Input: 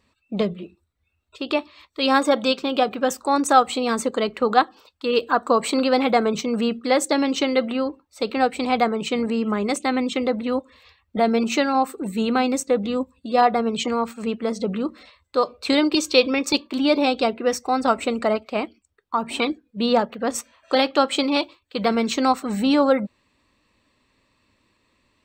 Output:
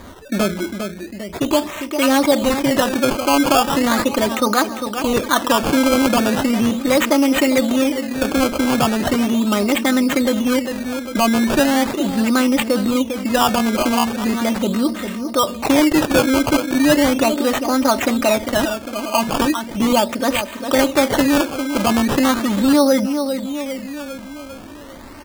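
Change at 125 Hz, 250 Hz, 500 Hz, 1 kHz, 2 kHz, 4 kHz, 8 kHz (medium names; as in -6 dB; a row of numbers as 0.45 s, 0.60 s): +9.0 dB, +7.0 dB, +3.0 dB, +1.5 dB, +6.0 dB, +4.0 dB, +8.0 dB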